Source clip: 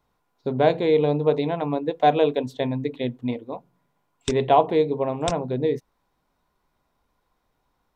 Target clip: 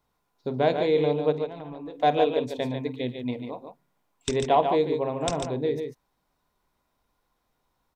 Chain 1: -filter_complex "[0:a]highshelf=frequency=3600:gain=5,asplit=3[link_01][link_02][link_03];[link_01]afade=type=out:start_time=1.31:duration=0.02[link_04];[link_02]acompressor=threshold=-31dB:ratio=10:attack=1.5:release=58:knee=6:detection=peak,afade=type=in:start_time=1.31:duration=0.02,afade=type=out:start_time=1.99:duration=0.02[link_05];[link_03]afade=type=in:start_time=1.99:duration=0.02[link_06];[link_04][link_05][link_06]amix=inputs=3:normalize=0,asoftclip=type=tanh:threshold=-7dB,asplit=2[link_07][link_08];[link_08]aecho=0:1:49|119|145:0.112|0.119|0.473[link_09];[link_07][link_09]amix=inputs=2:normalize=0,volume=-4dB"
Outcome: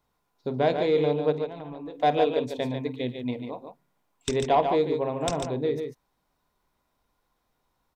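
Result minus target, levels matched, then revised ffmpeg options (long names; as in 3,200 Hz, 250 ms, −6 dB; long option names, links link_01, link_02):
soft clipping: distortion +11 dB
-filter_complex "[0:a]highshelf=frequency=3600:gain=5,asplit=3[link_01][link_02][link_03];[link_01]afade=type=out:start_time=1.31:duration=0.02[link_04];[link_02]acompressor=threshold=-31dB:ratio=10:attack=1.5:release=58:knee=6:detection=peak,afade=type=in:start_time=1.31:duration=0.02,afade=type=out:start_time=1.99:duration=0.02[link_05];[link_03]afade=type=in:start_time=1.99:duration=0.02[link_06];[link_04][link_05][link_06]amix=inputs=3:normalize=0,asoftclip=type=tanh:threshold=-0.5dB,asplit=2[link_07][link_08];[link_08]aecho=0:1:49|119|145:0.112|0.119|0.473[link_09];[link_07][link_09]amix=inputs=2:normalize=0,volume=-4dB"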